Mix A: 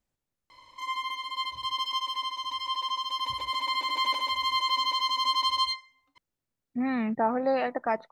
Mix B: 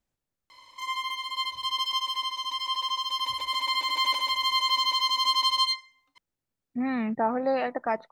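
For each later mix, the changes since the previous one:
background: add tilt EQ +2 dB/octave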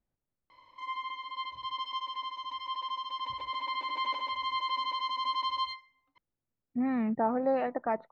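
master: add tape spacing loss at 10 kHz 38 dB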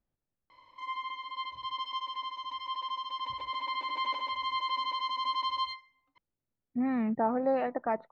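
no change

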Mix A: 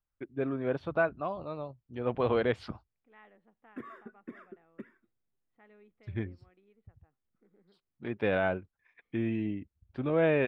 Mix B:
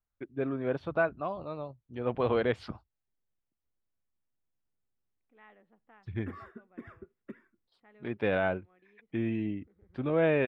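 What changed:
second voice: entry +2.25 s; background: entry +2.50 s

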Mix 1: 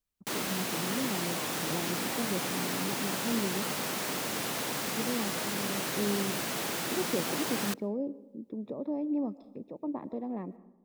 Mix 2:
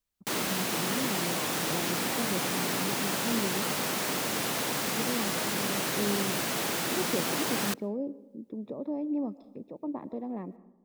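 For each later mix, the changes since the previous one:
background +3.0 dB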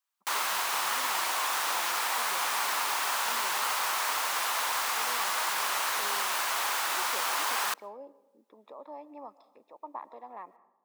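background: remove high-pass 150 Hz 24 dB/octave; master: add resonant high-pass 1 kHz, resonance Q 2.3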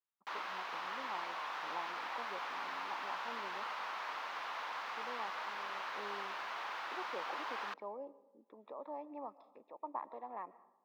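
background -9.0 dB; master: add distance through air 270 m

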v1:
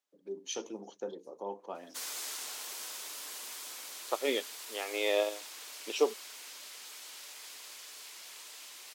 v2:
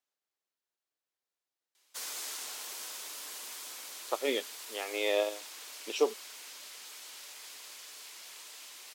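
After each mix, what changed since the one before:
first voice: muted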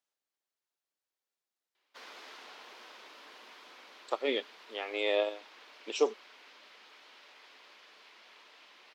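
background: add distance through air 310 m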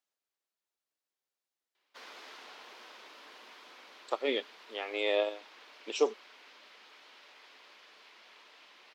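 no change

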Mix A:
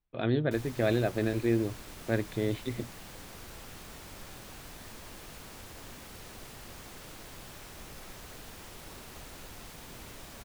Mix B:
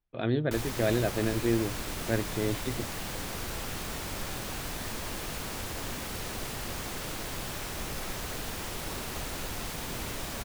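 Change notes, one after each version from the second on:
background +10.5 dB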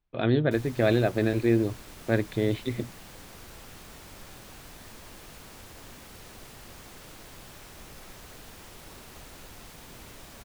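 speech +4.5 dB; background -10.5 dB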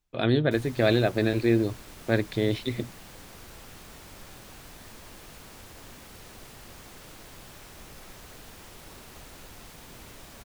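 speech: remove distance through air 220 m

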